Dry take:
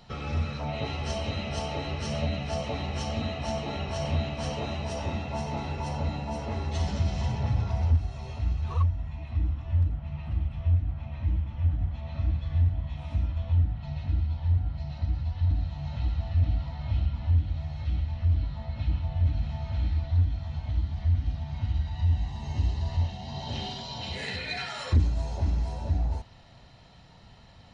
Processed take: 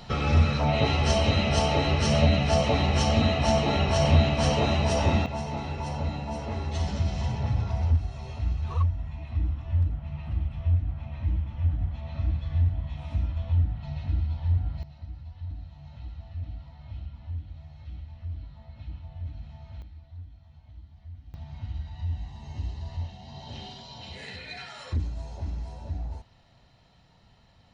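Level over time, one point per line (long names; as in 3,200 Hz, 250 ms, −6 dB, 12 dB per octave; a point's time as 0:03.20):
+8.5 dB
from 0:05.26 0 dB
from 0:14.83 −11.5 dB
from 0:19.82 −19 dB
from 0:21.34 −6.5 dB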